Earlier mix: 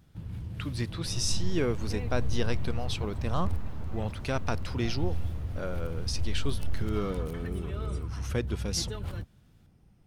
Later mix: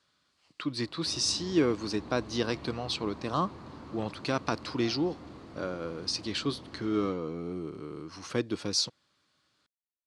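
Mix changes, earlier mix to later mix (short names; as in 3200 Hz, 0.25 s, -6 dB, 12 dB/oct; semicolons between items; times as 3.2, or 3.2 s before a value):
first sound: muted; master: add speaker cabinet 140–9000 Hz, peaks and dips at 310 Hz +9 dB, 1100 Hz +6 dB, 4400 Hz +9 dB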